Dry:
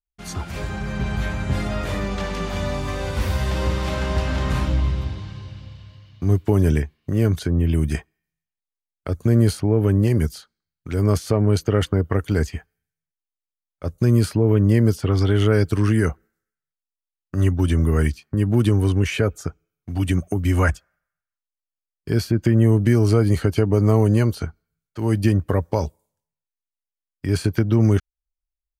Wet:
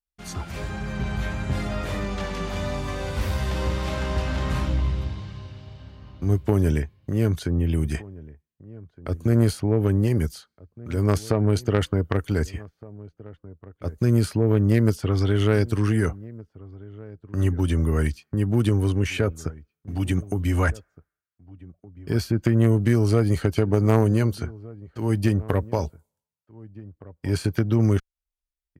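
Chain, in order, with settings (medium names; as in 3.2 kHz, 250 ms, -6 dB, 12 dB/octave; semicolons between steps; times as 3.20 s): Chebyshev shaper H 3 -14 dB, 5 -24 dB, 6 -37 dB, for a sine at -4.5 dBFS; echo from a far wall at 260 m, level -20 dB; vibrato 1.6 Hz 12 cents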